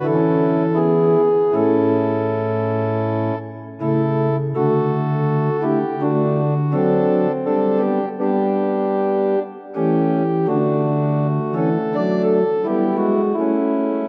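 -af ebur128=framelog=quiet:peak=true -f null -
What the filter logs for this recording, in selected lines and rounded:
Integrated loudness:
  I:         -18.7 LUFS
  Threshold: -28.7 LUFS
Loudness range:
  LRA:         1.7 LU
  Threshold: -39.0 LUFS
  LRA low:   -20.0 LUFS
  LRA high:  -18.3 LUFS
True peak:
  Peak:       -5.4 dBFS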